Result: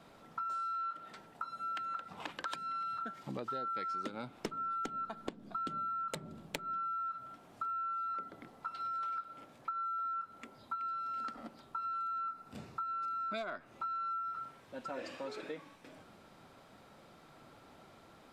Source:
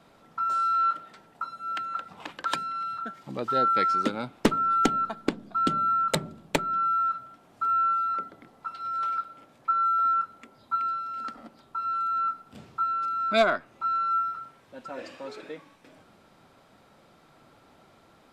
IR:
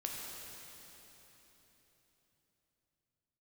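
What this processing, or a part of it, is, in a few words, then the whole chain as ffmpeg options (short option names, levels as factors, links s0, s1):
serial compression, leveller first: -filter_complex "[0:a]asettb=1/sr,asplit=3[s0][s1][s2];[s0]atrim=end=12.264[s3];[s1]atrim=start=12.26:end=13.32,asetpts=PTS-STARTPTS,afade=t=in:d=0.004:c=qsin,afade=t=out:st=1.056:d=0.004:c=qsin,bandreject=f=3200:w=8.6[s4];[s2]atrim=start=13.316[s5];[s3][s4]acrossfade=d=0.004:c1=hsin:c2=qsin[s6];[s6][s5]acrossfade=d=0.004:c1=qsin:c2=hsin,acompressor=threshold=0.0398:ratio=2.5,acompressor=threshold=0.0141:ratio=4,volume=0.891"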